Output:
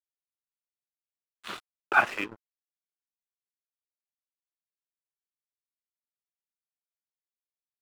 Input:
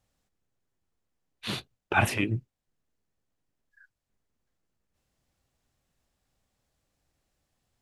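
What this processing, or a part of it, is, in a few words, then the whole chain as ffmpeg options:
pocket radio on a weak battery: -af "highpass=380,lowpass=3.3k,aeval=exprs='sgn(val(0))*max(abs(val(0))-0.00891,0)':c=same,equalizer=f=1.3k:t=o:w=0.55:g=10"

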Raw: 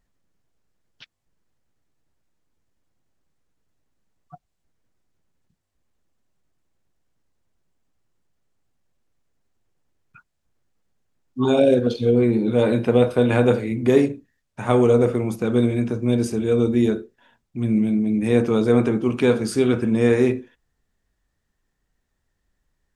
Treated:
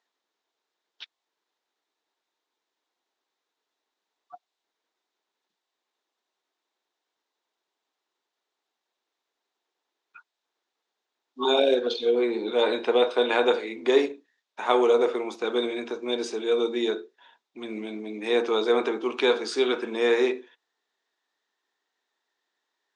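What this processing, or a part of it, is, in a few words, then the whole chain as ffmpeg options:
phone speaker on a table: -af "highpass=f=380:w=0.5412,highpass=f=380:w=1.3066,equalizer=f=550:t=q:w=4:g=-6,equalizer=f=930:t=q:w=4:g=4,equalizer=f=3.7k:t=q:w=4:g=8,lowpass=f=6.6k:w=0.5412,lowpass=f=6.6k:w=1.3066"

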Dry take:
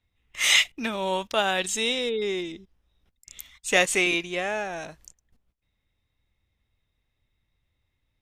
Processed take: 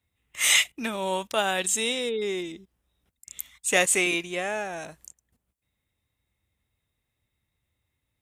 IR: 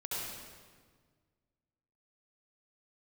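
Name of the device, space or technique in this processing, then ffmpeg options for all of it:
budget condenser microphone: -af "highpass=63,highshelf=f=6.7k:t=q:w=1.5:g=6.5,volume=-1dB"

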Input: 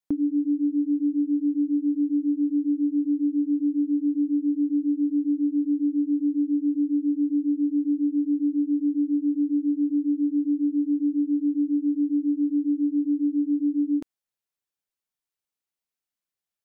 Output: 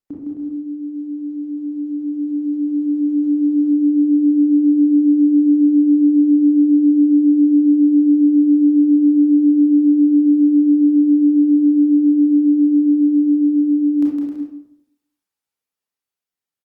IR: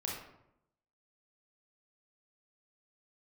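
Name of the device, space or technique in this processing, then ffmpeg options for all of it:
far-field microphone of a smart speaker: -filter_complex "[0:a]asplit=3[a][b][c];[a]afade=t=out:st=1.1:d=0.02[d];[b]bandreject=f=106.1:t=h:w=4,bandreject=f=212.2:t=h:w=4,bandreject=f=318.3:t=h:w=4,bandreject=f=424.4:t=h:w=4,bandreject=f=530.5:t=h:w=4,bandreject=f=636.6:t=h:w=4,bandreject=f=742.7:t=h:w=4,bandreject=f=848.8:t=h:w=4,bandreject=f=954.9:t=h:w=4,bandreject=f=1.061k:t=h:w=4,bandreject=f=1.1671k:t=h:w=4,bandreject=f=1.2732k:t=h:w=4,bandreject=f=1.3793k:t=h:w=4,bandreject=f=1.4854k:t=h:w=4,bandreject=f=1.5915k:t=h:w=4,bandreject=f=1.6976k:t=h:w=4,bandreject=f=1.8037k:t=h:w=4,bandreject=f=1.9098k:t=h:w=4,bandreject=f=2.0159k:t=h:w=4,bandreject=f=2.122k:t=h:w=4,bandreject=f=2.2281k:t=h:w=4,bandreject=f=2.3342k:t=h:w=4,bandreject=f=2.4403k:t=h:w=4,bandreject=f=2.5464k:t=h:w=4,bandreject=f=2.6525k:t=h:w=4,afade=t=in:st=1.1:d=0.02,afade=t=out:st=1.91:d=0.02[e];[c]afade=t=in:st=1.91:d=0.02[f];[d][e][f]amix=inputs=3:normalize=0,aecho=1:1:160|264|331.6|375.5|404.1:0.631|0.398|0.251|0.158|0.1[g];[1:a]atrim=start_sample=2205[h];[g][h]afir=irnorm=-1:irlink=0,highpass=f=81:p=1,dynaudnorm=f=200:g=31:m=15dB,volume=-2.5dB" -ar 48000 -c:a libopus -b:a 32k

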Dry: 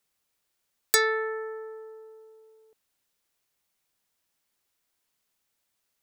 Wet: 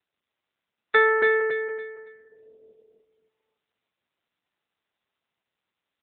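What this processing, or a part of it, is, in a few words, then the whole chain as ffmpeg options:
mobile call with aggressive noise cancelling: -filter_complex "[0:a]asettb=1/sr,asplit=3[a][b][c];[a]atrim=end=1.404[d];[b]atrim=start=1.4:end=2.32,asetpts=PTS-STARTPTS,afade=t=in:d=0.004:c=qsin,afade=t=out:st=0.916:d=0.004:c=qsin,agate=range=-34dB:threshold=-37dB:ratio=16:detection=peak[e];[c]atrim=start=2.316[f];[d][e]acrossfade=d=0.004:c1=hsin:c2=qsin[g];[g][f]acrossfade=d=0.004:c1=qsin:c2=hsin,highpass=f=110:p=1,equalizer=f=760:w=0.55:g=4,aecho=1:1:280|560|840|1120:0.631|0.221|0.0773|0.0271,afftdn=nr=21:nf=-50,volume=4dB" -ar 8000 -c:a libopencore_amrnb -b:a 10200

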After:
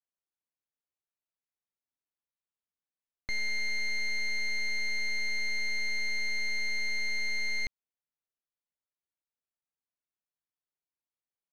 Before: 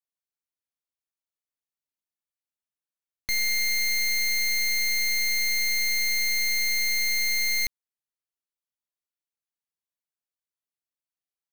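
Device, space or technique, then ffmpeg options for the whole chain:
through cloth: -af "lowpass=6.7k,highshelf=f=3.5k:g=-14,volume=-2dB"

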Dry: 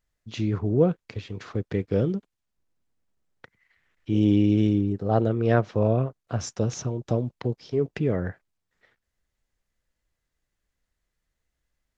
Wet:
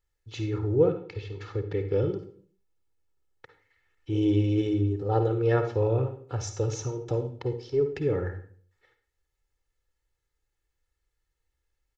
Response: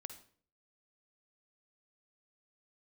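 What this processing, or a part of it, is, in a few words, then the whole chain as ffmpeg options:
microphone above a desk: -filter_complex "[0:a]aecho=1:1:2.3:0.87[a];[1:a]atrim=start_sample=2205[b];[a][b]afir=irnorm=-1:irlink=0,asettb=1/sr,asplit=3[c][d][e];[c]atrim=end=0.884[f];[d]atrim=start=0.88:end=2.17,asetpts=PTS-STARTPTS,afade=t=in:d=0.004:c=qsin,afade=t=out:st=1.286:d=0.004:c=qsin,lowpass=5.4k[g];[e]atrim=start=2.166[h];[f][g]acrossfade=d=0.004:c1=hsin:c2=qsin[i];[i][h]acrossfade=d=0.004:c1=qsin:c2=hsin"

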